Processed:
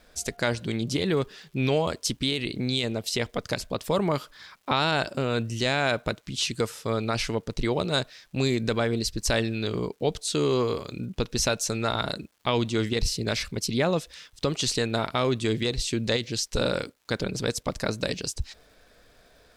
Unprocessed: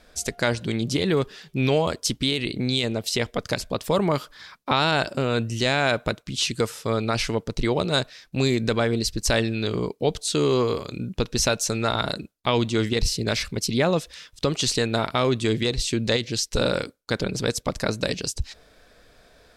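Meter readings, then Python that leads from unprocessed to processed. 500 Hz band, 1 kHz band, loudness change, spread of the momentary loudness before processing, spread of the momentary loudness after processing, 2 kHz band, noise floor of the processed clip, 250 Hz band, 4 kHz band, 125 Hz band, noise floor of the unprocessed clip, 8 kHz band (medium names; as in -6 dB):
-3.0 dB, -3.0 dB, -3.0 dB, 6 LU, 6 LU, -3.0 dB, -61 dBFS, -3.0 dB, -3.0 dB, -3.0 dB, -58 dBFS, -3.0 dB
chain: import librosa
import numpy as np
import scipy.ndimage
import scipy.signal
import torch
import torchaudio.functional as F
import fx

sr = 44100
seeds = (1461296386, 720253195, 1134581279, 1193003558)

y = fx.dmg_crackle(x, sr, seeds[0], per_s=530.0, level_db=-51.0)
y = y * 10.0 ** (-3.0 / 20.0)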